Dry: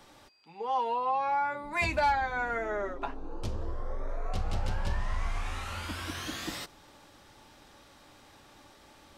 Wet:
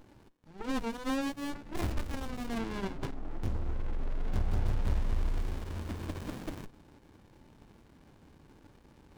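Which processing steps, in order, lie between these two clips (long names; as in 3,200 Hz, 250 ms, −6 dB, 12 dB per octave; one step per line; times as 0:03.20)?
phase distortion by the signal itself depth 0.75 ms
windowed peak hold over 65 samples
level +2.5 dB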